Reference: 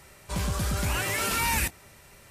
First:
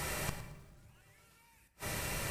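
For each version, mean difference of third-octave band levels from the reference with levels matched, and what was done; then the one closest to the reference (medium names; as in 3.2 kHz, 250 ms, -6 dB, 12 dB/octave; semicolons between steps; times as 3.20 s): 21.5 dB: compression 12:1, threshold -35 dBFS, peak gain reduction 13 dB; inverted gate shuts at -35 dBFS, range -41 dB; simulated room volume 640 m³, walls mixed, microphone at 0.62 m; bit-crushed delay 111 ms, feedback 35%, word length 12-bit, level -13 dB; trim +13.5 dB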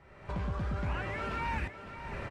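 11.0 dB: recorder AGC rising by 42 dB/s; low-pass 1.8 kHz 12 dB/octave; delay 557 ms -11 dB; trim -5.5 dB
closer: second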